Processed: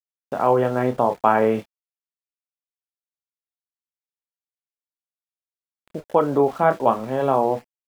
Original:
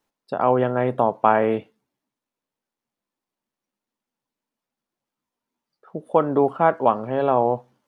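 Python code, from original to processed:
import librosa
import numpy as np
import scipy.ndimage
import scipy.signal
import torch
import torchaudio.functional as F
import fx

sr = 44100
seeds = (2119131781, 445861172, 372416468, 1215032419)

y = np.where(np.abs(x) >= 10.0 ** (-39.5 / 20.0), x, 0.0)
y = fx.chorus_voices(y, sr, voices=4, hz=0.46, base_ms=29, depth_ms=3.0, mix_pct=30)
y = F.gain(torch.from_numpy(y), 2.5).numpy()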